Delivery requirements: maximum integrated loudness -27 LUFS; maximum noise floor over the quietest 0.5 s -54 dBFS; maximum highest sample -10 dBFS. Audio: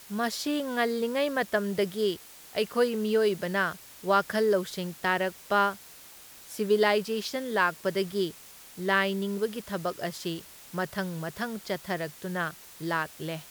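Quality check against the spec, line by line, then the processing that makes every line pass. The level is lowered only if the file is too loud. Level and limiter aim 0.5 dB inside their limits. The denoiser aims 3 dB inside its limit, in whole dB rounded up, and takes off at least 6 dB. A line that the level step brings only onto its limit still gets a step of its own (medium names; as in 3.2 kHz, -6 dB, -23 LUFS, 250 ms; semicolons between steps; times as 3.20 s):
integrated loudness -29.0 LUFS: pass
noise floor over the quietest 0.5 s -50 dBFS: fail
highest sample -9.5 dBFS: fail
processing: noise reduction 7 dB, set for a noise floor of -50 dBFS; peak limiter -10.5 dBFS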